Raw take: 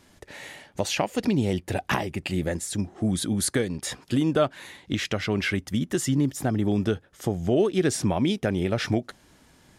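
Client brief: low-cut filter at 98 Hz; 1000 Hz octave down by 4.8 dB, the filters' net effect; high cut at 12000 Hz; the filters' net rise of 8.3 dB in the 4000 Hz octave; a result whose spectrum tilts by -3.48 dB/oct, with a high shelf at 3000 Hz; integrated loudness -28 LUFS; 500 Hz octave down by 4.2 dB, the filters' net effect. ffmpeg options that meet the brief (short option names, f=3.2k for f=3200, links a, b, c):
-af "highpass=98,lowpass=12k,equalizer=f=500:t=o:g=-4.5,equalizer=f=1k:t=o:g=-6,highshelf=f=3k:g=4.5,equalizer=f=4k:t=o:g=7.5,volume=-2.5dB"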